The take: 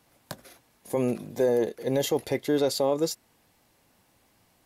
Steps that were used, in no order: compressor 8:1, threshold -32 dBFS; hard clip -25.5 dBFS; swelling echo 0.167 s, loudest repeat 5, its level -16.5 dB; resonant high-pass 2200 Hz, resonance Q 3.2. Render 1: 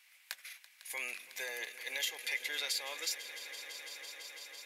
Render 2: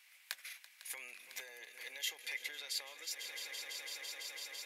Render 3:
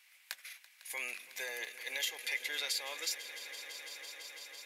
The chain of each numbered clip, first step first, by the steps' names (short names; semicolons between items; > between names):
resonant high-pass > compressor > swelling echo > hard clip; swelling echo > compressor > hard clip > resonant high-pass; resonant high-pass > compressor > hard clip > swelling echo